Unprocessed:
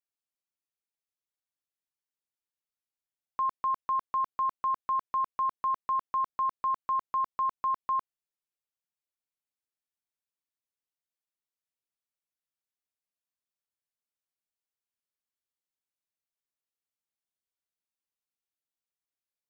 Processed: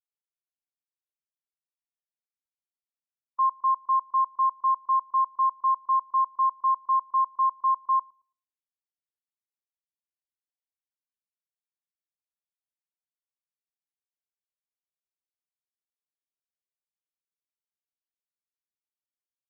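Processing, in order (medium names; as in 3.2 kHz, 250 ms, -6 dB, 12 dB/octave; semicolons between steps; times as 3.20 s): level rider gain up to 9 dB; on a send: filtered feedback delay 111 ms, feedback 47%, low-pass 980 Hz, level -17 dB; on the sum: spectral contrast expander 1.5:1; trim -2.5 dB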